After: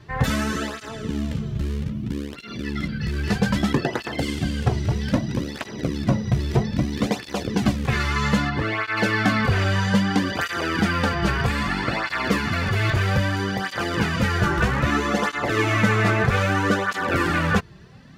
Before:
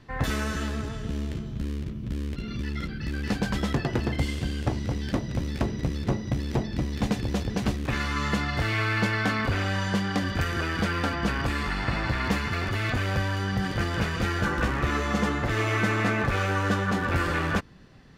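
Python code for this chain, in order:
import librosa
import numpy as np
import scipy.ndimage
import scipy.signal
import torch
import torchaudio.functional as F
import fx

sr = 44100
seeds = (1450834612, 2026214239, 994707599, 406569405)

y = fx.lowpass(x, sr, hz=1800.0, slope=6, at=(8.48, 8.96), fade=0.02)
y = fx.flanger_cancel(y, sr, hz=0.62, depth_ms=4.2)
y = y * 10.0 ** (8.0 / 20.0)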